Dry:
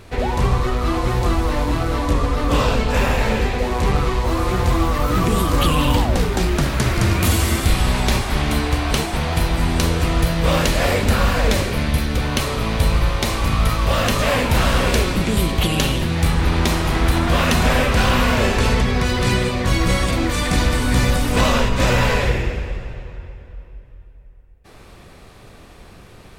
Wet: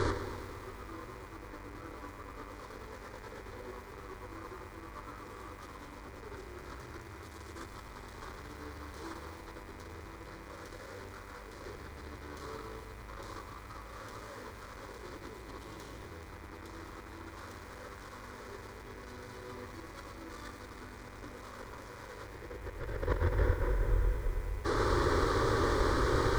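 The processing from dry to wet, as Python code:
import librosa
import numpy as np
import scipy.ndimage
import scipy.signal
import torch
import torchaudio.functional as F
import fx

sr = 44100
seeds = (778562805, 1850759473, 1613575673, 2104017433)

y = fx.air_absorb(x, sr, metres=110.0)
y = fx.tube_stage(y, sr, drive_db=25.0, bias=0.45)
y = fx.over_compress(y, sr, threshold_db=-39.0, ratio=-0.5)
y = fx.low_shelf(y, sr, hz=68.0, db=-9.0)
y = fx.fixed_phaser(y, sr, hz=700.0, stages=6)
y = fx.dmg_buzz(y, sr, base_hz=100.0, harmonics=25, level_db=-62.0, tilt_db=-2, odd_only=False)
y = fx.echo_crushed(y, sr, ms=109, feedback_pct=80, bits=10, wet_db=-8.5)
y = y * 10.0 ** (7.5 / 20.0)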